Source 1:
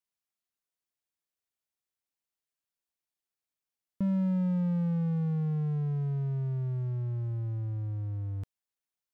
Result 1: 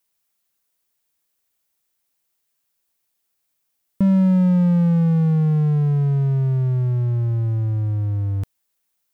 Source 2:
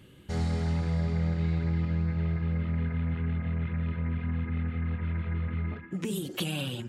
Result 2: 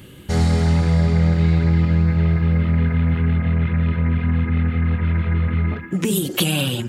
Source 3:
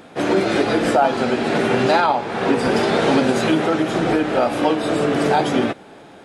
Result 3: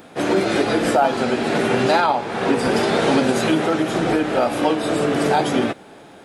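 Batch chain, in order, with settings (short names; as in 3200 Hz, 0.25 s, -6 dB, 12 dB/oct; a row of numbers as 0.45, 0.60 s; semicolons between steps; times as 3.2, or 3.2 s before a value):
high shelf 9600 Hz +9 dB; match loudness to -19 LUFS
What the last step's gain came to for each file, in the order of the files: +12.5, +12.0, -1.0 dB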